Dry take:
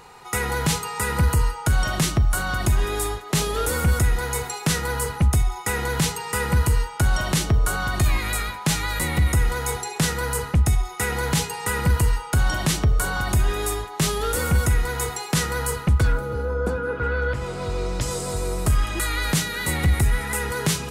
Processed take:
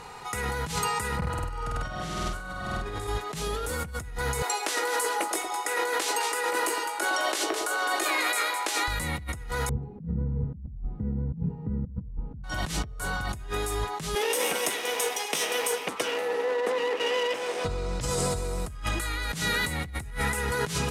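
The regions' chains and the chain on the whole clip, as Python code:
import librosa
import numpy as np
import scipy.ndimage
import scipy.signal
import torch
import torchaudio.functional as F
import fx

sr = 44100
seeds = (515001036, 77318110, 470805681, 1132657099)

y = fx.chain(x, sr, fx.lowpass(hz=2900.0, slope=6),
    fx.over_compress(threshold_db=-26.0, ratio=-1.0),
    fx.room_flutter(wall_m=8.4, rt60_s=1.3), at=(1.17, 3.07))
y = fx.chain(y, sr, fx.ellip_highpass(hz=320.0, order=4, stop_db=50),
    fx.doubler(ms=18.0, db=-11),
    fx.echo_alternate(ms=105, hz=840.0, feedback_pct=64, wet_db=-8.0), at=(4.42, 8.88))
y = fx.chain(y, sr, fx.delta_mod(bps=64000, step_db=-27.0),
    fx.lowpass_res(hz=200.0, q=2.5),
    fx.echo_single(ms=124, db=-20.5), at=(9.69, 12.44))
y = fx.chain(y, sr, fx.lower_of_two(delay_ms=0.35),
    fx.highpass(hz=350.0, slope=24), at=(14.15, 17.65))
y = scipy.signal.sosfilt(scipy.signal.bessel(2, 12000.0, 'lowpass', norm='mag', fs=sr, output='sos'), y)
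y = fx.notch(y, sr, hz=360.0, q=12.0)
y = fx.over_compress(y, sr, threshold_db=-29.0, ratio=-1.0)
y = F.gain(torch.from_numpy(y), -1.5).numpy()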